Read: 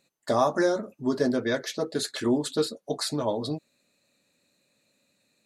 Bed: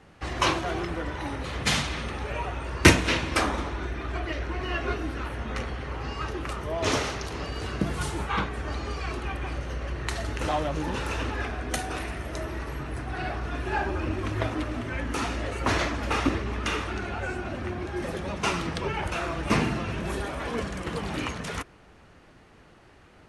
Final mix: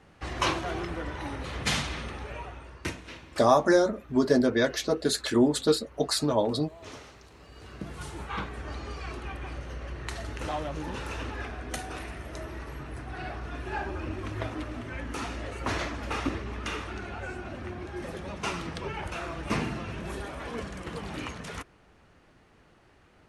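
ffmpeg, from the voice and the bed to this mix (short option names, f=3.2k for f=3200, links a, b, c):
-filter_complex "[0:a]adelay=3100,volume=2.5dB[a];[1:a]volume=10.5dB,afade=t=out:st=1.91:d=0.96:silence=0.158489,afade=t=in:st=7.42:d=1.12:silence=0.211349[b];[a][b]amix=inputs=2:normalize=0"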